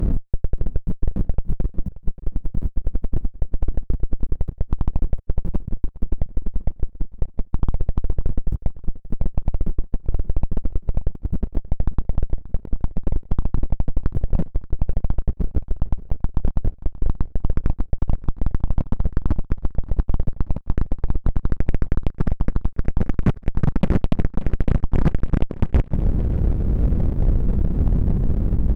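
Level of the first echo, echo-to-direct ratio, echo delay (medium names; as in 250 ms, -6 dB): -17.0 dB, -16.0 dB, 580 ms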